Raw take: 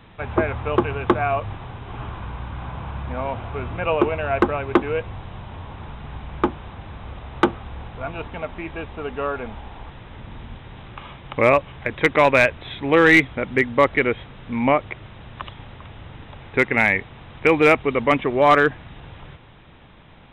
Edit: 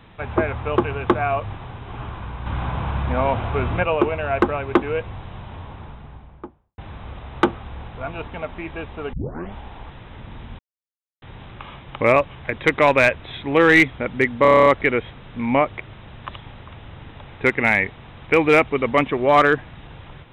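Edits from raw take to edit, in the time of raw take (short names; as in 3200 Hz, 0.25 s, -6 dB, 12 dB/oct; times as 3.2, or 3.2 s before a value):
2.46–3.83 gain +6.5 dB
5.5–6.78 studio fade out
9.13 tape start 0.40 s
10.59 insert silence 0.63 s
13.79 stutter 0.03 s, 9 plays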